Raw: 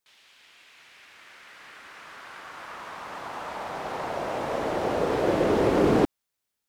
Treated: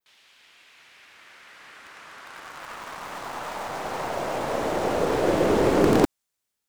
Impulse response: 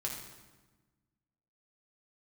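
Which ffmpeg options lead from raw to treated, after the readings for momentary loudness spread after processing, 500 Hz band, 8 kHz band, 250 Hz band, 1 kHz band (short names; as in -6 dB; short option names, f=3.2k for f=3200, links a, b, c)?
21 LU, +1.5 dB, +7.0 dB, +2.0 dB, +2.0 dB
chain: -filter_complex "[0:a]adynamicequalizer=threshold=0.00126:dfrequency=7700:dqfactor=1.2:tfrequency=7700:tqfactor=1.2:attack=5:release=100:ratio=0.375:range=2.5:mode=boostabove:tftype=bell,asplit=2[a][b];[b]acrusher=bits=3:dc=4:mix=0:aa=0.000001,volume=-7.5dB[c];[a][c]amix=inputs=2:normalize=0"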